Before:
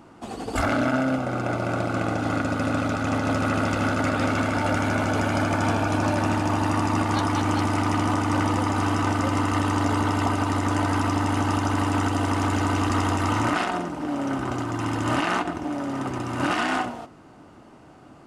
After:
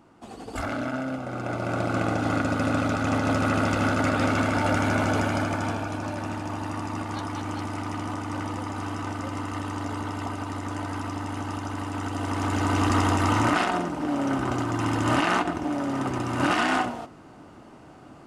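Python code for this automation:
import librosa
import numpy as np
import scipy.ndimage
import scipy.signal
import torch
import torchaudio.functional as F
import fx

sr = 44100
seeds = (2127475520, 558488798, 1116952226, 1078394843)

y = fx.gain(x, sr, db=fx.line((1.18, -7.0), (1.91, 0.0), (5.12, 0.0), (6.0, -8.5), (11.93, -8.5), (12.86, 1.0)))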